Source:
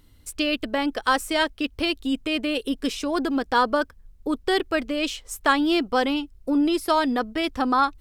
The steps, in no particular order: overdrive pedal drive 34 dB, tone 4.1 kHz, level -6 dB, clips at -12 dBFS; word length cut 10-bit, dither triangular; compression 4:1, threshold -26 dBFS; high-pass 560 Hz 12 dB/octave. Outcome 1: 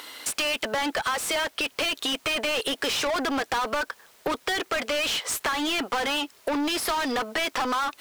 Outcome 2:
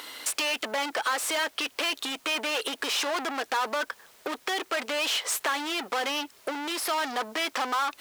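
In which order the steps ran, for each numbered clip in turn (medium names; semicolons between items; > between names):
high-pass > overdrive pedal > compression > word length cut; overdrive pedal > compression > high-pass > word length cut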